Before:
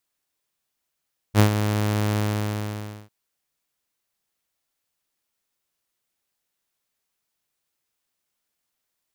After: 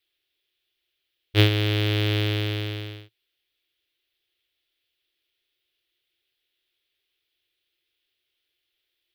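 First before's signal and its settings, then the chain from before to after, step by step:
ADSR saw 105 Hz, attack 57 ms, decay 98 ms, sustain -9.5 dB, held 0.82 s, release 931 ms -8.5 dBFS
FFT filter 110 Hz 0 dB, 220 Hz -20 dB, 340 Hz +7 dB, 580 Hz -4 dB, 1 kHz -11 dB, 1.6 kHz 0 dB, 3.4 kHz +13 dB, 7 kHz -14 dB, 13 kHz -5 dB

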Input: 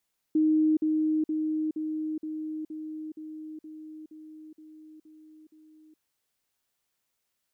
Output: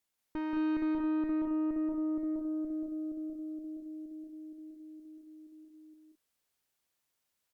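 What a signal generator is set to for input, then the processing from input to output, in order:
level ladder 311 Hz -19.5 dBFS, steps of -3 dB, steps 12, 0.42 s 0.05 s
valve stage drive 34 dB, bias 0.75; loudspeakers at several distances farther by 62 m -3 dB, 74 m -6 dB

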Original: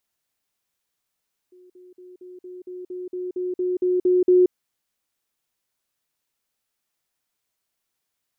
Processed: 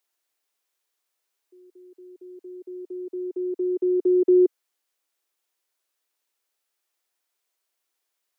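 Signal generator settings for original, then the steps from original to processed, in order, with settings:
level ladder 363 Hz -47.5 dBFS, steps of 3 dB, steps 13, 0.18 s 0.05 s
steep high-pass 310 Hz

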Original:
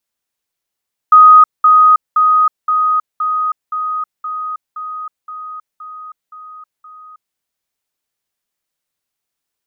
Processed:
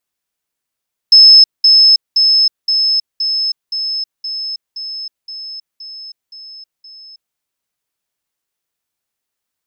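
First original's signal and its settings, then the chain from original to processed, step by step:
level ladder 1.25 kHz -1.5 dBFS, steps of -3 dB, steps 12, 0.32 s 0.20 s
split-band scrambler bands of 4 kHz

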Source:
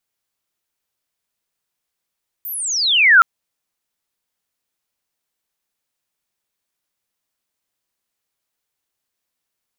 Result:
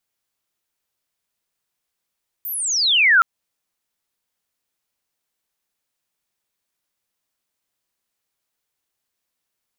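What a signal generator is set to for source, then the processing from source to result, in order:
sweep logarithmic 15 kHz -> 1.3 kHz -25.5 dBFS -> -4.5 dBFS 0.77 s
compression 2:1, threshold -15 dBFS

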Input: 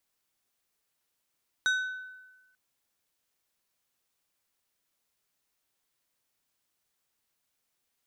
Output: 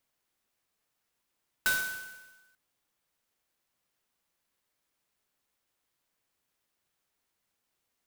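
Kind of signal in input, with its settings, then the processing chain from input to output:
glass hit plate, lowest mode 1.51 kHz, decay 1.20 s, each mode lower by 7 dB, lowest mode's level -22 dB
sampling jitter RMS 0.055 ms

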